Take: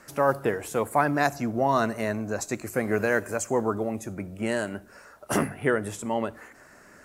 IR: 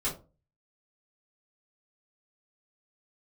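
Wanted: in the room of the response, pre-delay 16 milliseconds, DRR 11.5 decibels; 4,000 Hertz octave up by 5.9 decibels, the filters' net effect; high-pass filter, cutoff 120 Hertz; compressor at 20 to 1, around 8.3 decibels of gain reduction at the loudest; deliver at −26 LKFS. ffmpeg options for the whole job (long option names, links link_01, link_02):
-filter_complex "[0:a]highpass=120,equalizer=frequency=4000:width_type=o:gain=7.5,acompressor=threshold=-25dB:ratio=20,asplit=2[link_01][link_02];[1:a]atrim=start_sample=2205,adelay=16[link_03];[link_02][link_03]afir=irnorm=-1:irlink=0,volume=-17.5dB[link_04];[link_01][link_04]amix=inputs=2:normalize=0,volume=5.5dB"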